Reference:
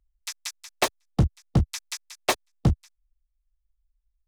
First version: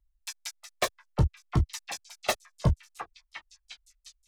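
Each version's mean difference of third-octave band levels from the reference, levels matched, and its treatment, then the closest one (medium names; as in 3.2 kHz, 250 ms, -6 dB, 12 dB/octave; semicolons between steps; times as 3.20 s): 2.0 dB: on a send: repeats whose band climbs or falls 355 ms, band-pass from 780 Hz, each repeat 0.7 oct, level -3.5 dB; on the sum: Shepard-style flanger falling 0.6 Hz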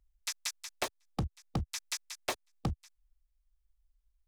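5.0 dB: compression 12:1, threshold -28 dBFS, peak gain reduction 13.5 dB; saturation -23.5 dBFS, distortion -14 dB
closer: first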